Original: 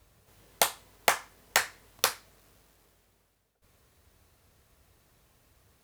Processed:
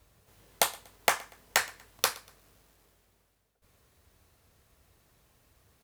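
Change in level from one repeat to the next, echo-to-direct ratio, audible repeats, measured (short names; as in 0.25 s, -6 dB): -9.0 dB, -22.5 dB, 2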